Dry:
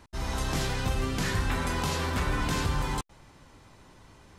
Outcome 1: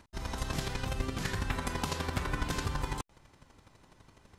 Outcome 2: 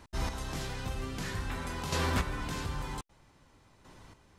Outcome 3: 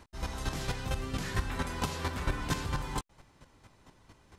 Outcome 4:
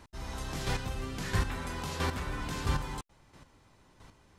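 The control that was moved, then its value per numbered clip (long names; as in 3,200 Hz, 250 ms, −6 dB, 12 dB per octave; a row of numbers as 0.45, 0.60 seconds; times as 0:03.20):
square-wave tremolo, speed: 12, 0.52, 4.4, 1.5 Hertz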